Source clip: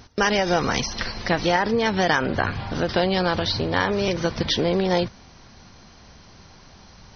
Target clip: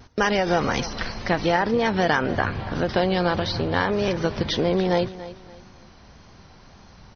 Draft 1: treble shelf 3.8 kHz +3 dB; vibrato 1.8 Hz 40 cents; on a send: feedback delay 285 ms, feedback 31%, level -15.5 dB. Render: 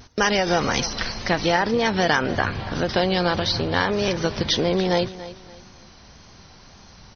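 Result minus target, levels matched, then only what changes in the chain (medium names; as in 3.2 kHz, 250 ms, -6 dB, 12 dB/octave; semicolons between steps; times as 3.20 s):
8 kHz band +6.5 dB
change: treble shelf 3.8 kHz -8 dB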